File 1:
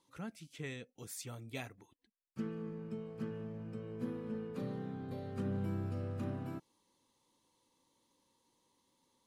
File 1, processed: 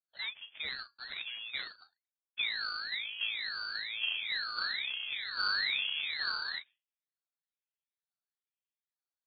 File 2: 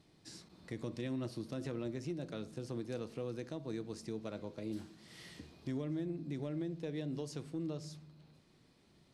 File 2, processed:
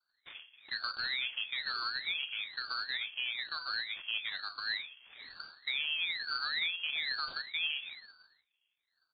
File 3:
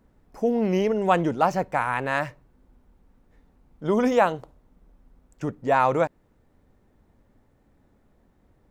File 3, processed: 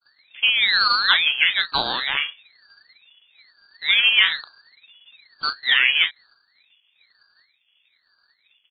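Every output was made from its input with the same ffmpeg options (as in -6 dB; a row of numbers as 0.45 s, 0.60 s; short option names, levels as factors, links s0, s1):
-filter_complex "[0:a]agate=range=0.0224:threshold=0.002:ratio=3:detection=peak,asplit=2[s0][s1];[s1]adelay=36,volume=0.299[s2];[s0][s2]amix=inputs=2:normalize=0,acrossover=split=1700[s3][s4];[s4]acrusher=samples=35:mix=1:aa=0.000001:lfo=1:lforange=56:lforate=2.7[s5];[s3][s5]amix=inputs=2:normalize=0,tiltshelf=f=1400:g=3.5,acrusher=bits=4:mode=log:mix=0:aa=0.000001,lowpass=f=2700:t=q:w=0.5098,lowpass=f=2700:t=q:w=0.6013,lowpass=f=2700:t=q:w=0.9,lowpass=f=2700:t=q:w=2.563,afreqshift=-3200,aeval=exprs='val(0)*sin(2*PI*890*n/s+890*0.75/1.1*sin(2*PI*1.1*n/s))':c=same,volume=1.5"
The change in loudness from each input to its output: +8.5 LU, +7.5 LU, +6.0 LU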